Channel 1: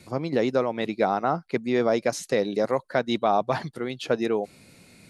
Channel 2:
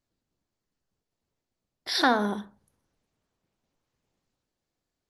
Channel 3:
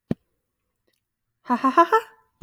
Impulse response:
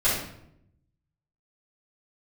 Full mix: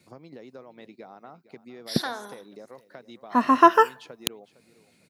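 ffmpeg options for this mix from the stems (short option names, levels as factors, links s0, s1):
-filter_complex "[0:a]acompressor=threshold=0.0251:ratio=6,volume=0.316,asplit=2[s0][s1];[s1]volume=0.15[s2];[1:a]highpass=260,aemphasis=mode=production:type=bsi,volume=0.316[s3];[2:a]adelay=1850,volume=1.12[s4];[s2]aecho=0:1:458|916|1374|1832:1|0.31|0.0961|0.0298[s5];[s0][s3][s4][s5]amix=inputs=4:normalize=0,highpass=110"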